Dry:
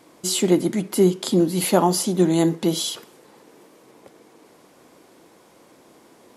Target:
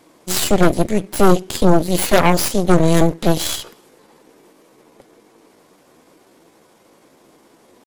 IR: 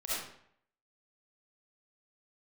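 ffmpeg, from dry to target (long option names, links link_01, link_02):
-af "aeval=exprs='0.794*(cos(1*acos(clip(val(0)/0.794,-1,1)))-cos(1*PI/2))+0.0398*(cos(2*acos(clip(val(0)/0.794,-1,1)))-cos(2*PI/2))+0.0112*(cos(3*acos(clip(val(0)/0.794,-1,1)))-cos(3*PI/2))+0.0178*(cos(5*acos(clip(val(0)/0.794,-1,1)))-cos(5*PI/2))+0.282*(cos(8*acos(clip(val(0)/0.794,-1,1)))-cos(8*PI/2))':channel_layout=same,atempo=0.81"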